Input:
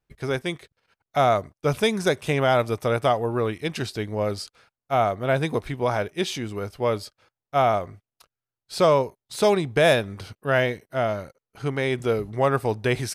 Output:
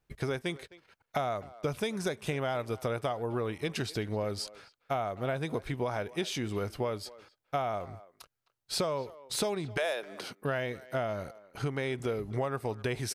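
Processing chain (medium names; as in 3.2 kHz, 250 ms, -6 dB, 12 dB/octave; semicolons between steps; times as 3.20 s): 9.76–10.40 s: high-pass 570 Hz -> 160 Hz 24 dB/octave; compression 8:1, threshold -32 dBFS, peak gain reduction 17.5 dB; speakerphone echo 260 ms, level -18 dB; trim +2.5 dB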